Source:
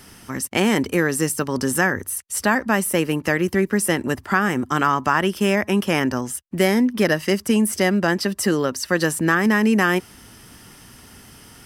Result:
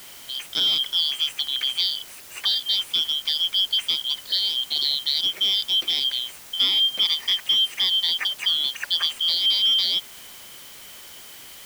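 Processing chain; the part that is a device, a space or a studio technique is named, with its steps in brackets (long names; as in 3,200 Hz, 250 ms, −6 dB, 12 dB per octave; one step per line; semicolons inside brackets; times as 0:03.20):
split-band scrambled radio (band-splitting scrambler in four parts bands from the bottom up 3412; band-pass filter 380–3,300 Hz; white noise bed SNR 19 dB)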